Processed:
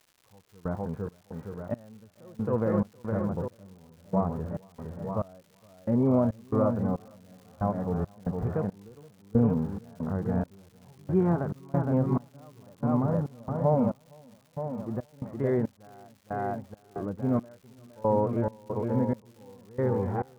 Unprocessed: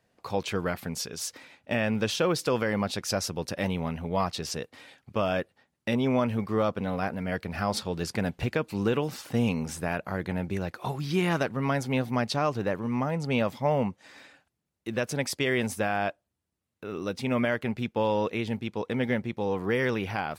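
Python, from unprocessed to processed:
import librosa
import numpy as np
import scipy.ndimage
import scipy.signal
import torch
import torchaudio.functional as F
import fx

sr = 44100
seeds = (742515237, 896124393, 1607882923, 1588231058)

p1 = np.repeat(scipy.signal.resample_poly(x, 1, 8), 8)[:len(x)]
p2 = scipy.signal.sosfilt(scipy.signal.butter(4, 1300.0, 'lowpass', fs=sr, output='sos'), p1)
p3 = fx.low_shelf(p2, sr, hz=70.0, db=6.0)
p4 = p3 + fx.echo_feedback(p3, sr, ms=463, feedback_pct=53, wet_db=-4.5, dry=0)
p5 = fx.hpss(p4, sr, part='percussive', gain_db=-12)
p6 = fx.step_gate(p5, sr, bpm=69, pattern='...xx.xx', floor_db=-24.0, edge_ms=4.5)
p7 = fx.dmg_crackle(p6, sr, seeds[0], per_s=270.0, level_db=-50.0)
y = p7 * 10.0 ** (2.5 / 20.0)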